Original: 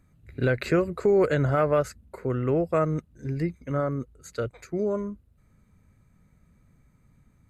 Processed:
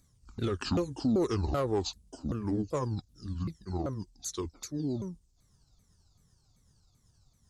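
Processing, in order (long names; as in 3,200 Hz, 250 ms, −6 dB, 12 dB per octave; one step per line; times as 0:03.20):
pitch shifter swept by a sawtooth −11 semitones, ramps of 386 ms
soft clipping −14 dBFS, distortion −23 dB
high shelf with overshoot 3,100 Hz +13 dB, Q 1.5
level −5 dB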